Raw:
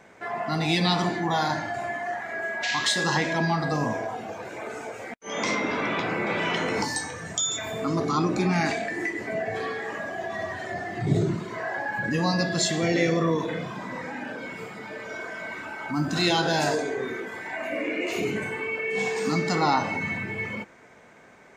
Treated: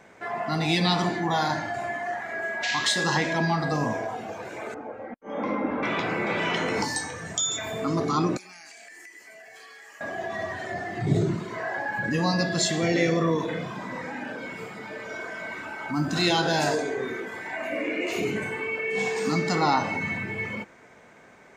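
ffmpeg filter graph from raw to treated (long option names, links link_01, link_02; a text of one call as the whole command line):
ffmpeg -i in.wav -filter_complex "[0:a]asettb=1/sr,asplit=3[link_01][link_02][link_03];[link_01]atrim=end=4.744[link_04];[link_02]atrim=start=4.74:end=5.83,asetpts=PTS-STARTPTS,afade=type=in:duration=0.004:curve=qsin,afade=type=out:start_time=1.086:duration=0.004:curve=qsin,lowpass=1100,aecho=1:1:3.7:0.52,atrim=end_sample=48069[link_05];[link_03]atrim=start=5.826[link_06];[link_04][link_05]acrossfade=duration=0.004:curve1=hsin:curve2=qsin[link_07];[link_07][link_06]acrossfade=duration=0.004:curve1=qsin:curve2=hsin,asettb=1/sr,asplit=3[link_08][link_09][link_10];[link_08]atrim=end=8.374[link_11];[link_09]atrim=start=8.37:end=10.01,asetpts=PTS-STARTPTS,afade=type=in:duration=0.004:curve=qsin,afade=type=out:start_time=1.636:duration=0.004:curve=qsin,aderivative,bandreject=frequency=3700:width=6,acompressor=threshold=-42dB:ratio=10:attack=3.2:release=140:knee=1:detection=peak[link_12];[link_10]atrim=start=10.006[link_13];[link_11][link_12]acrossfade=duration=0.004:curve1=hsin:curve2=qsin[link_14];[link_14][link_13]acrossfade=duration=0.004:curve1=qsin:curve2=hsin" out.wav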